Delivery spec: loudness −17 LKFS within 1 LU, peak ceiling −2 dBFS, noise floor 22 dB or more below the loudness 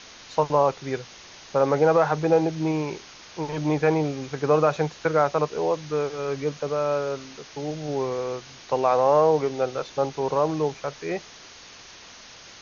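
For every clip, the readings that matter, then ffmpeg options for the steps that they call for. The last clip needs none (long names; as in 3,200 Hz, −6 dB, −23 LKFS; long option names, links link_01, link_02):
background noise floor −46 dBFS; target noise floor −47 dBFS; integrated loudness −24.5 LKFS; sample peak −7.5 dBFS; target loudness −17.0 LKFS
→ -af "afftdn=noise_reduction=6:noise_floor=-46"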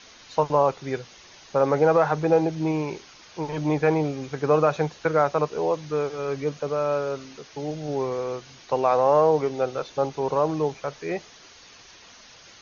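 background noise floor −49 dBFS; integrated loudness −24.5 LKFS; sample peak −7.5 dBFS; target loudness −17.0 LKFS
→ -af "volume=7.5dB,alimiter=limit=-2dB:level=0:latency=1"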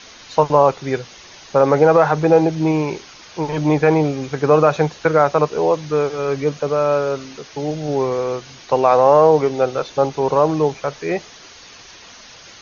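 integrated loudness −17.5 LKFS; sample peak −2.0 dBFS; background noise floor −42 dBFS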